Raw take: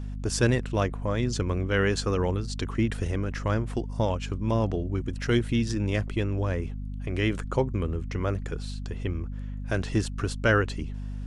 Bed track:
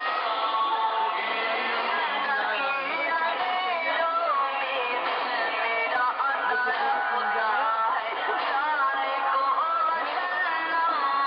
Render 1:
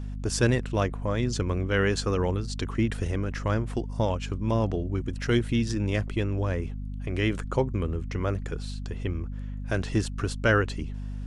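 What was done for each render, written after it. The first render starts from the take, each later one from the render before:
no processing that can be heard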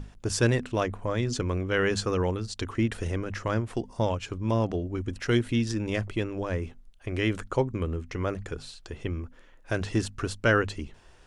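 mains-hum notches 50/100/150/200/250 Hz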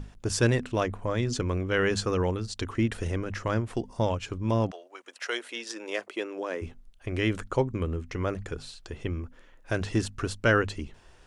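0:04.70–0:06.61: high-pass filter 690 Hz → 280 Hz 24 dB per octave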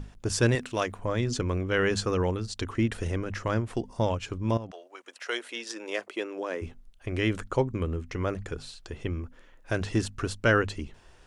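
0:00.55–0:00.99: spectral tilt +2 dB per octave
0:04.57–0:05.27: downward compressor 4 to 1, threshold −37 dBFS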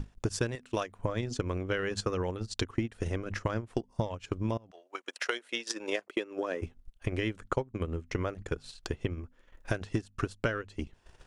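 transient designer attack +9 dB, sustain −11 dB
downward compressor 6 to 1, threshold −28 dBFS, peak gain reduction 16 dB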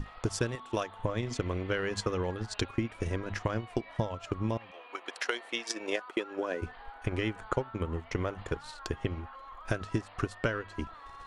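mix in bed track −24 dB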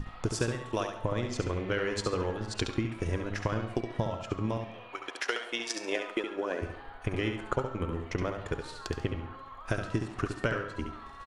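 repeating echo 69 ms, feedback 27%, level −6.5 dB
comb and all-pass reverb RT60 0.8 s, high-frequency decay 0.55×, pre-delay 50 ms, DRR 13 dB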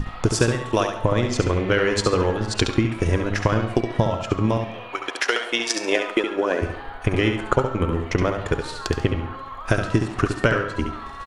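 level +11 dB
brickwall limiter −3 dBFS, peak gain reduction 2 dB

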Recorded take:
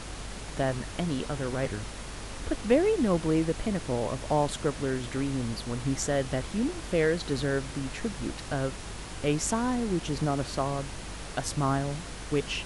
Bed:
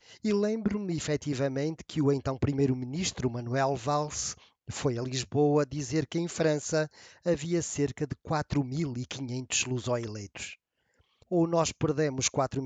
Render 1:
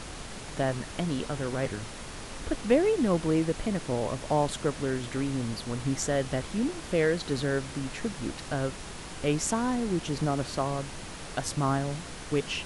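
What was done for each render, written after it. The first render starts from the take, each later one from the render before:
hum removal 50 Hz, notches 2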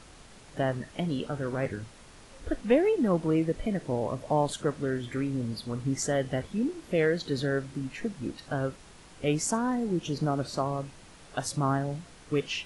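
noise reduction from a noise print 11 dB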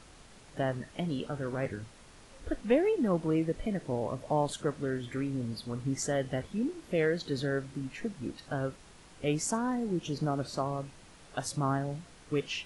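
level −3 dB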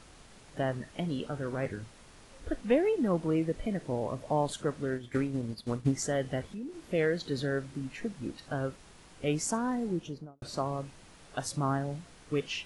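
0:04.89–0:05.92: transient designer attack +9 dB, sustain −9 dB
0:06.43–0:06.85: downward compressor 2.5 to 1, threshold −40 dBFS
0:09.85–0:10.42: fade out and dull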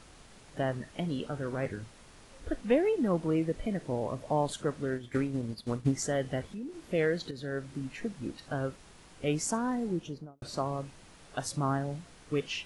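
0:07.31–0:07.73: fade in linear, from −12 dB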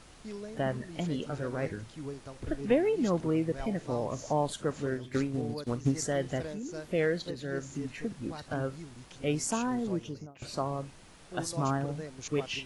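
mix in bed −14.5 dB

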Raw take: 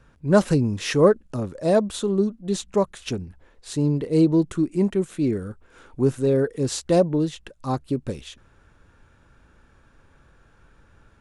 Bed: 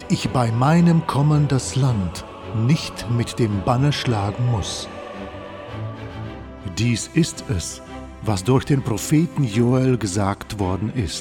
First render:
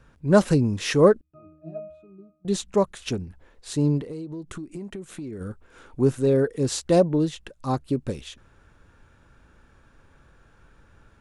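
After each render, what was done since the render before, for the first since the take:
0:01.21–0:02.45: resonances in every octave D#, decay 0.64 s
0:04.00–0:05.41: downward compressor 20 to 1, threshold −31 dBFS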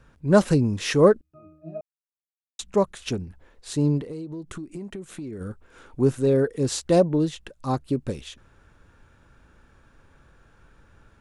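0:01.81–0:02.59: silence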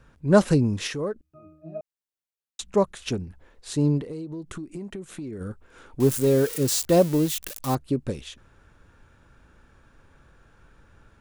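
0:00.87–0:01.75: downward compressor 2 to 1, threshold −36 dBFS
0:06.00–0:07.75: spike at every zero crossing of −22 dBFS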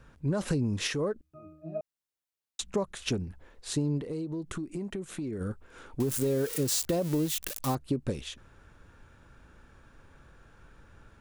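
brickwall limiter −15 dBFS, peak gain reduction 11 dB
downward compressor, threshold −25 dBFS, peak gain reduction 7 dB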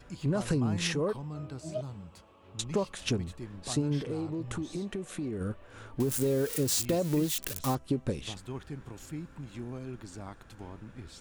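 mix in bed −23 dB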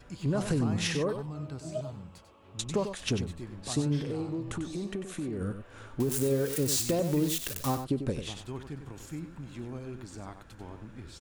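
single-tap delay 95 ms −9 dB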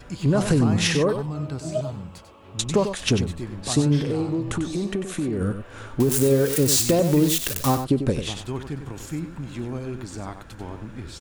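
level +9 dB

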